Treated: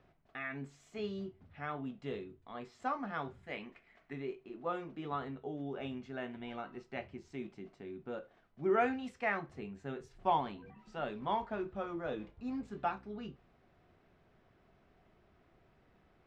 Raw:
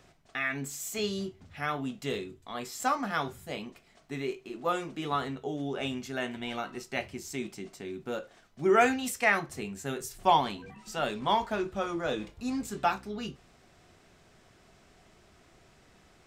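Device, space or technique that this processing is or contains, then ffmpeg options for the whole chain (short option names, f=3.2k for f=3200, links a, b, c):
phone in a pocket: -filter_complex "[0:a]asettb=1/sr,asplit=3[a][b][c];[a]atrim=end=3.434[d];[b]atrim=start=3.43:end=4.13,asetpts=PTS-STARTPTS,afade=t=in:d=0.004:c=qsin,afade=t=out:st=0.696:d=0.004:c=qsin,equalizer=f=125:t=o:w=1:g=-5,equalizer=f=2k:t=o:w=1:g=12,equalizer=f=8k:t=o:w=1:g=5[e];[c]atrim=start=4.126[f];[d][e]acrossfade=d=0.004:c1=hsin:c2=qsin[g];[g][f]acrossfade=d=0.004:c1=qsin:c2=hsin,lowpass=3.7k,highshelf=f=2.5k:g=-10,volume=-6.5dB"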